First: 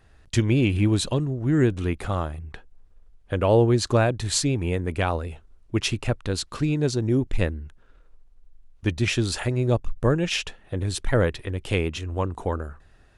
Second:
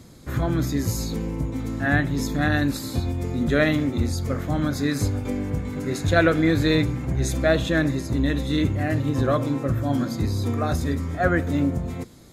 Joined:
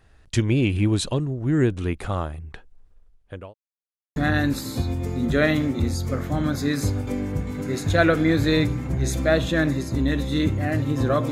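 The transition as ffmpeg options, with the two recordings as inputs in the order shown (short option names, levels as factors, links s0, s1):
-filter_complex "[0:a]apad=whole_dur=11.31,atrim=end=11.31,asplit=2[s0][s1];[s0]atrim=end=3.54,asetpts=PTS-STARTPTS,afade=t=out:st=2.89:d=0.65[s2];[s1]atrim=start=3.54:end=4.16,asetpts=PTS-STARTPTS,volume=0[s3];[1:a]atrim=start=2.34:end=9.49,asetpts=PTS-STARTPTS,afade=t=in:d=0.004:c=hsin[s4];[s2][s3][s4]concat=n=3:v=0:a=1"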